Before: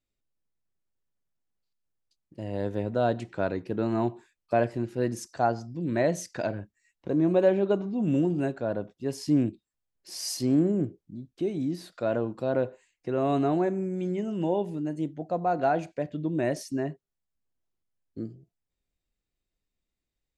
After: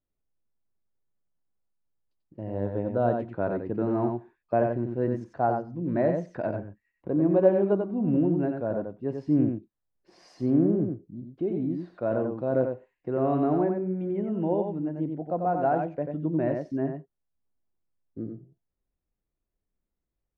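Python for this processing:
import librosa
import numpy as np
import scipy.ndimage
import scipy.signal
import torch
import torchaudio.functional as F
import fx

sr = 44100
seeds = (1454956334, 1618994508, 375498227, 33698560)

p1 = scipy.signal.sosfilt(scipy.signal.butter(2, 1300.0, 'lowpass', fs=sr, output='sos'), x)
y = p1 + fx.echo_single(p1, sr, ms=91, db=-5.0, dry=0)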